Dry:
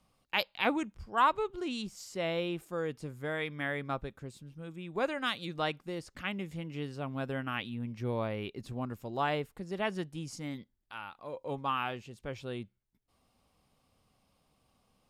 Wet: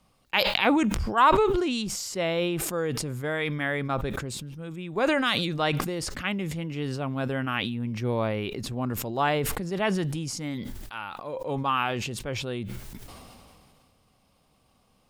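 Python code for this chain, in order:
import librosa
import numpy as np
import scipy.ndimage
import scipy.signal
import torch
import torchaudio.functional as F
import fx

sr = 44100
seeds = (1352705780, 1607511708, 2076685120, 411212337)

y = fx.sustainer(x, sr, db_per_s=24.0)
y = y * 10.0 ** (6.0 / 20.0)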